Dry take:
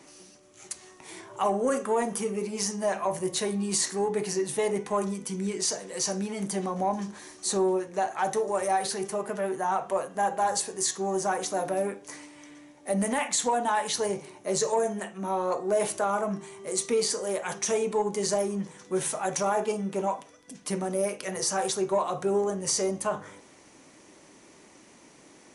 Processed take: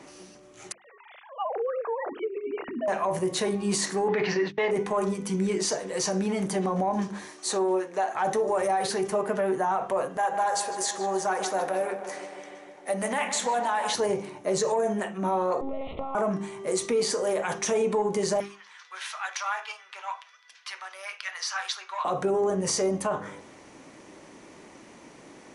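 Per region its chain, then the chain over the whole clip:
0.72–2.88 sine-wave speech + compressor 12:1, threshold -32 dBFS
4.08–4.71 steep low-pass 5300 Hz + gate -37 dBFS, range -39 dB + bell 2000 Hz +11 dB 1.9 oct
7.25–8.15 HPF 230 Hz + low shelf 440 Hz -6.5 dB
10.17–13.95 low shelf 460 Hz -12 dB + darkening echo 0.152 s, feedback 72%, low-pass 3500 Hz, level -11 dB
15.61–16.15 monotone LPC vocoder at 8 kHz 270 Hz + compressor 16:1, threshold -33 dBFS + Butterworth band-stop 1600 Hz, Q 2
18.4–22.05 HPF 1200 Hz 24 dB/oct + resonant high shelf 6200 Hz -11 dB, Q 1.5
whole clip: high shelf 4400 Hz -10.5 dB; notches 50/100/150/200/250/300/350/400 Hz; limiter -24.5 dBFS; gain +6.5 dB

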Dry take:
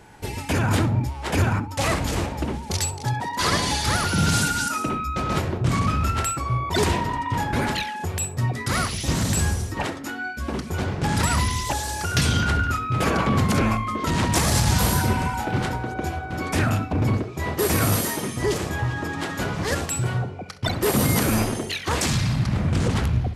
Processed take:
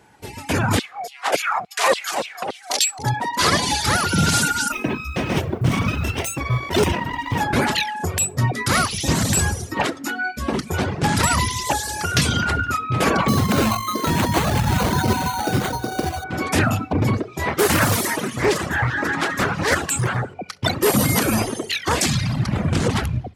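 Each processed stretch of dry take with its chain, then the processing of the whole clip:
0.79–2.99 bell 130 Hz -4 dB 1.8 oct + LFO high-pass saw down 3.5 Hz 560–3900 Hz + frequency shift -120 Hz
4.72–7.41 minimum comb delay 0.33 ms + bell 9400 Hz -6 dB 2.3 oct + companded quantiser 8-bit
13.28–16.24 median filter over 9 samples + sample-rate reducer 5200 Hz
17.47–20.34 bell 1500 Hz +5 dB 1 oct + split-band echo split 890 Hz, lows 0.117 s, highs 82 ms, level -15 dB + Doppler distortion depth 0.64 ms
whole clip: reverb removal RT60 0.84 s; HPF 120 Hz 6 dB/oct; AGC gain up to 11.5 dB; gain -3.5 dB

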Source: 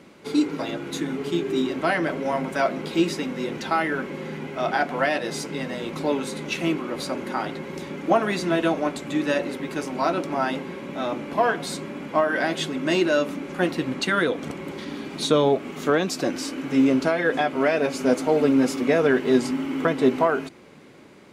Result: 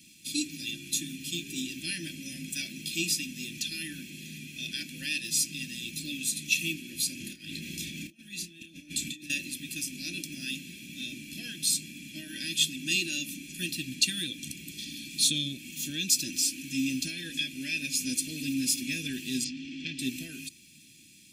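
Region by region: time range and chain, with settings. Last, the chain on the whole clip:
7.2–9.3 high shelf 4500 Hz -5.5 dB + negative-ratio compressor -34 dBFS + doubler 30 ms -8.5 dB
19.44–19.99 LPF 5300 Hz 24 dB/oct + core saturation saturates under 1300 Hz
whole clip: Chebyshev band-stop 340–2500 Hz, order 3; pre-emphasis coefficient 0.9; comb 1.2 ms, depth 95%; gain +7.5 dB

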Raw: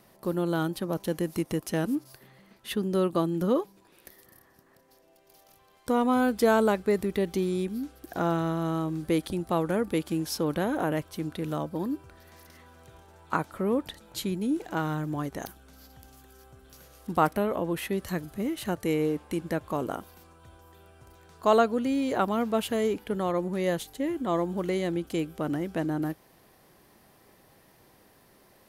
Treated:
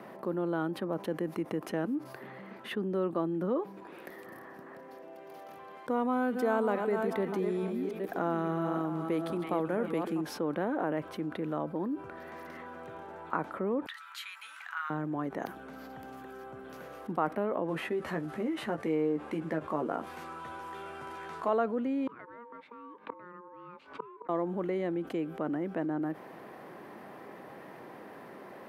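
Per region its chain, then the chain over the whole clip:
5.9–10.21 reverse delay 0.431 s, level -8 dB + high shelf 5000 Hz +9.5 dB + delay with a stepping band-pass 0.323 s, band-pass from 2600 Hz, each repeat -1.4 oct, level -9.5 dB
13.86–14.9 elliptic high-pass 1200 Hz, stop band 70 dB + doubler 13 ms -11.5 dB
17.68–21.49 CVSD 64 kbps + doubler 13 ms -4.5 dB + mismatched tape noise reduction encoder only
22.07–24.29 BPF 120–3600 Hz + ring modulator 710 Hz + flipped gate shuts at -26 dBFS, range -32 dB
whole clip: HPF 87 Hz; three-band isolator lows -17 dB, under 170 Hz, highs -21 dB, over 2300 Hz; fast leveller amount 50%; gain -8 dB

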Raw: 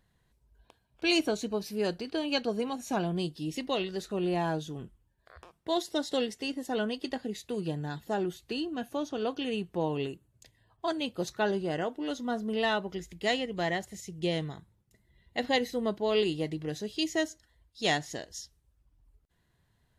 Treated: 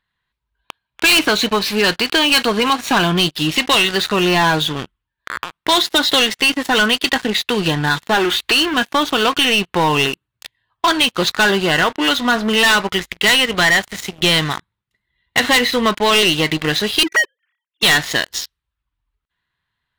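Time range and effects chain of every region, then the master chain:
8.14–8.74 G.711 law mismatch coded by mu + bell 160 Hz -12.5 dB 0.67 oct
17.03–17.83 sine-wave speech + compressor 1.5:1, threshold -42 dBFS
whole clip: band shelf 2000 Hz +15 dB 2.5 oct; sample leveller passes 5; compressor 2:1, threshold -12 dBFS; gain -2 dB

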